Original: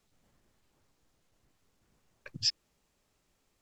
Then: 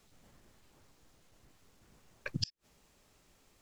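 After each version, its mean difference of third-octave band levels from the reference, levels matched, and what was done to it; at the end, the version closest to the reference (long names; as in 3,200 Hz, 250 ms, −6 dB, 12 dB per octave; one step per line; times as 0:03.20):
9.5 dB: gate with flip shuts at −27 dBFS, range −34 dB
level +8 dB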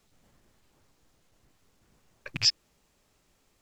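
4.0 dB: loose part that buzzes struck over −45 dBFS, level −26 dBFS
level +6 dB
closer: second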